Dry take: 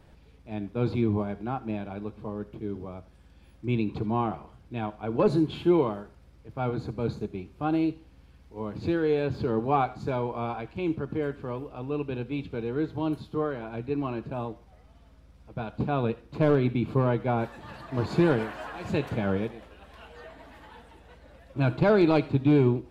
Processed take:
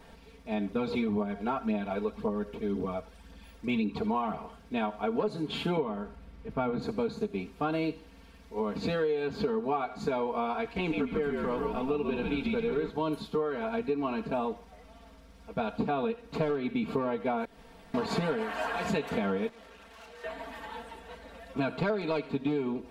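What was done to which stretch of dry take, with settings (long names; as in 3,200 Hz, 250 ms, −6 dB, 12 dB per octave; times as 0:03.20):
0:00.70–0:04.37: phase shifter 1.9 Hz, delay 2.4 ms, feedback 42%
0:05.77–0:06.82: bass and treble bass +7 dB, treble −8 dB
0:10.62–0:12.90: echo with shifted repeats 140 ms, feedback 45%, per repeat −62 Hz, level −3.5 dB
0:17.45–0:17.94: fill with room tone
0:19.49–0:20.24: tube saturation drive 55 dB, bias 0.65
whole clip: low-shelf EQ 220 Hz −9 dB; comb filter 4.4 ms, depth 94%; downward compressor 16 to 1, threshold −31 dBFS; level +5 dB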